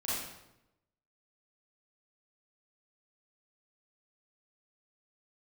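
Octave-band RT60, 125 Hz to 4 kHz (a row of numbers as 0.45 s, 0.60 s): 1.1 s, 1.0 s, 0.95 s, 0.85 s, 0.75 s, 0.70 s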